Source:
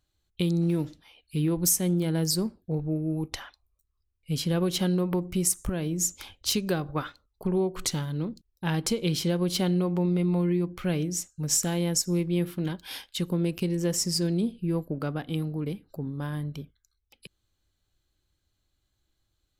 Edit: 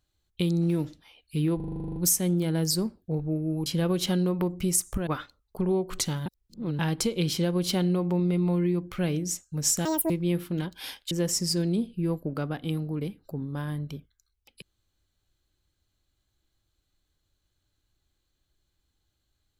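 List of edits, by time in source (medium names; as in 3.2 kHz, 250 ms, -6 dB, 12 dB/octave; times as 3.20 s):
1.56 s: stutter 0.04 s, 11 plays
3.26–4.38 s: delete
5.79–6.93 s: delete
8.12–8.65 s: reverse
11.71–12.17 s: speed 184%
13.18–13.76 s: delete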